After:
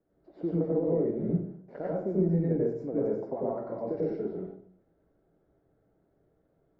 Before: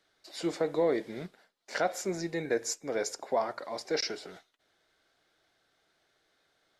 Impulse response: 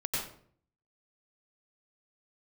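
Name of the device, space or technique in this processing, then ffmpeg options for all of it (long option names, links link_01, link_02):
television next door: -filter_complex "[0:a]acompressor=threshold=-33dB:ratio=3,lowpass=380[link_01];[1:a]atrim=start_sample=2205[link_02];[link_01][link_02]afir=irnorm=-1:irlink=0,volume=7dB"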